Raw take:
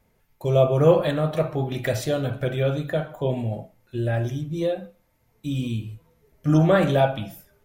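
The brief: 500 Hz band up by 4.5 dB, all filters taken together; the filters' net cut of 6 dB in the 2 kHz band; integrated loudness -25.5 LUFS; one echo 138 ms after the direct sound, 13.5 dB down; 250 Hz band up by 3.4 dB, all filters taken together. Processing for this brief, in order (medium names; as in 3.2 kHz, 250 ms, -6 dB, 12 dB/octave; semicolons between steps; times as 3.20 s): peaking EQ 250 Hz +3.5 dB; peaking EQ 500 Hz +5 dB; peaking EQ 2 kHz -8.5 dB; delay 138 ms -13.5 dB; trim -5.5 dB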